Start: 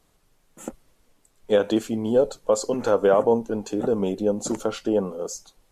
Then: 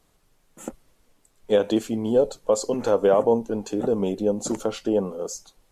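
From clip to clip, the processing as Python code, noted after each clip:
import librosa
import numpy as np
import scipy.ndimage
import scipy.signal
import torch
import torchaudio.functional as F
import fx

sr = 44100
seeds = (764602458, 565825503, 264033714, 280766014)

y = fx.dynamic_eq(x, sr, hz=1400.0, q=2.6, threshold_db=-42.0, ratio=4.0, max_db=-5)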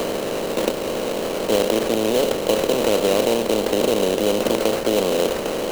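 y = fx.bin_compress(x, sr, power=0.2)
y = fx.sample_hold(y, sr, seeds[0], rate_hz=3500.0, jitter_pct=20)
y = fx.band_squash(y, sr, depth_pct=40)
y = y * 10.0 ** (-5.5 / 20.0)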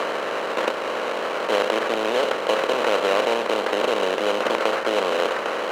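y = fx.bandpass_q(x, sr, hz=1400.0, q=1.4)
y = y * 10.0 ** (8.0 / 20.0)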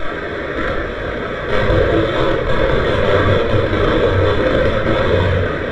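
y = fx.lower_of_two(x, sr, delay_ms=0.54)
y = fx.room_shoebox(y, sr, seeds[1], volume_m3=1000.0, walls='mixed', distance_m=2.8)
y = fx.spectral_expand(y, sr, expansion=1.5)
y = y * 10.0 ** (2.5 / 20.0)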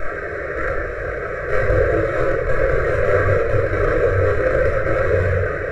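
y = fx.fixed_phaser(x, sr, hz=920.0, stages=6)
y = y * 10.0 ** (-1.5 / 20.0)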